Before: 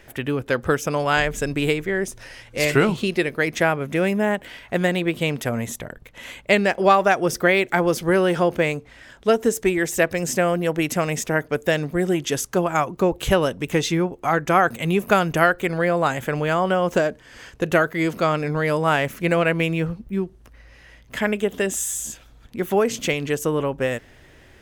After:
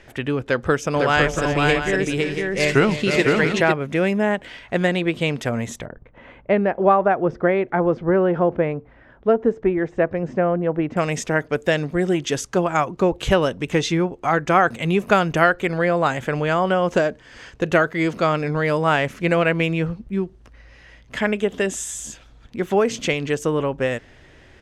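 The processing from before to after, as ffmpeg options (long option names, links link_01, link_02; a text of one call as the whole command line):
ffmpeg -i in.wav -filter_complex "[0:a]asplit=3[link_01][link_02][link_03];[link_01]afade=type=out:start_time=0.92:duration=0.02[link_04];[link_02]aecho=1:1:310|508|680:0.266|0.708|0.316,afade=type=in:start_time=0.92:duration=0.02,afade=type=out:start_time=3.71:duration=0.02[link_05];[link_03]afade=type=in:start_time=3.71:duration=0.02[link_06];[link_04][link_05][link_06]amix=inputs=3:normalize=0,asettb=1/sr,asplit=3[link_07][link_08][link_09];[link_07]atrim=end=5.864[link_10];[link_08]atrim=start=5.86:end=10.97,asetpts=PTS-STARTPTS,afade=type=in:duration=0.004:curve=qsin,afade=type=out:start_time=5.106:duration=0.004:curve=qsin,lowpass=1200[link_11];[link_09]atrim=start=10.966[link_12];[link_10][link_11]acrossfade=duration=0.004:curve1=hsin:curve2=qsin[link_13];[link_13][link_12]acrossfade=duration=0.004:curve1=qsin:curve2=hsin,lowpass=6800,volume=1dB" out.wav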